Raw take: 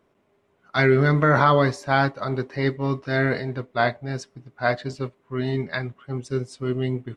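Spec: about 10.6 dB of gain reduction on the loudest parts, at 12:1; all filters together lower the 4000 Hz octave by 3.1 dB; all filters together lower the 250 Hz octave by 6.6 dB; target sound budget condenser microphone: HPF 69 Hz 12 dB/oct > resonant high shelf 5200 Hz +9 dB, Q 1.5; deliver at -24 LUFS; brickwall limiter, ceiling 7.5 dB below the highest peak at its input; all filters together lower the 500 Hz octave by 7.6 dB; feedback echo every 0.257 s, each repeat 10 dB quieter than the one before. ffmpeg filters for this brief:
-af "equalizer=f=250:t=o:g=-7,equalizer=f=500:t=o:g=-8,equalizer=f=4k:t=o:g=-3,acompressor=threshold=-25dB:ratio=12,alimiter=limit=-21dB:level=0:latency=1,highpass=69,highshelf=f=5.2k:t=q:w=1.5:g=9,aecho=1:1:257|514|771|1028:0.316|0.101|0.0324|0.0104,volume=9.5dB"

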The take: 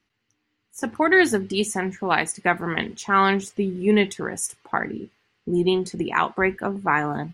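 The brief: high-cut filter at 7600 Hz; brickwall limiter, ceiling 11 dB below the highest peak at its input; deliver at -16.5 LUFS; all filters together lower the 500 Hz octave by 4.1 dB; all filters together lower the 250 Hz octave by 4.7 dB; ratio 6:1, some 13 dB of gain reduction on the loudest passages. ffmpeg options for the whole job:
-af "lowpass=7.6k,equalizer=f=250:t=o:g=-6,equalizer=f=500:t=o:g=-3,acompressor=threshold=-28dB:ratio=6,volume=19.5dB,alimiter=limit=-5dB:level=0:latency=1"

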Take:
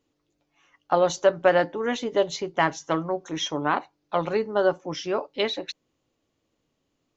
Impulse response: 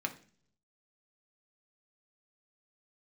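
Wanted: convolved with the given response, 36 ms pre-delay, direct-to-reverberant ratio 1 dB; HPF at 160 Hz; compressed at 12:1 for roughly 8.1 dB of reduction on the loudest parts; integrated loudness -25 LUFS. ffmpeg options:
-filter_complex "[0:a]highpass=160,acompressor=threshold=-21dB:ratio=12,asplit=2[a][b];[1:a]atrim=start_sample=2205,adelay=36[c];[b][c]afir=irnorm=-1:irlink=0,volume=-4dB[d];[a][d]amix=inputs=2:normalize=0,volume=2.5dB"

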